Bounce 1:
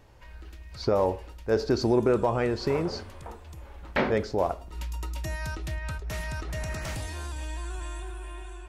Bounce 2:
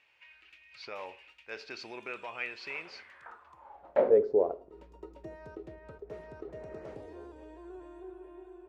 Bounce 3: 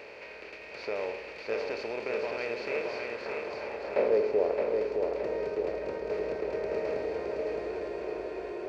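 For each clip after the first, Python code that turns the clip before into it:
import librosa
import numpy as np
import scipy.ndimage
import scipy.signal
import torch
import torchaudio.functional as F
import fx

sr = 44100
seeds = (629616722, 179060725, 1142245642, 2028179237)

y1 = fx.filter_sweep_bandpass(x, sr, from_hz=2500.0, to_hz=430.0, start_s=2.91, end_s=4.2, q=5.0)
y1 = y1 * 10.0 ** (7.0 / 20.0)
y2 = fx.bin_compress(y1, sr, power=0.4)
y2 = fx.echo_feedback(y2, sr, ms=617, feedback_pct=53, wet_db=-4)
y2 = y2 * 10.0 ** (-5.0 / 20.0)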